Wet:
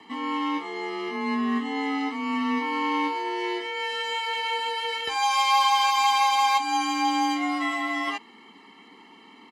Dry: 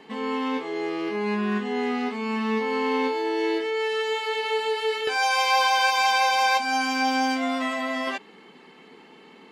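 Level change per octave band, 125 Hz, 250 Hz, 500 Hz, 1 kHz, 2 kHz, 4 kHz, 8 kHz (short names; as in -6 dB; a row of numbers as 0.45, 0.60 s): n/a, -0.5 dB, -9.0 dB, +1.0 dB, -3.5 dB, +0.5 dB, 0.0 dB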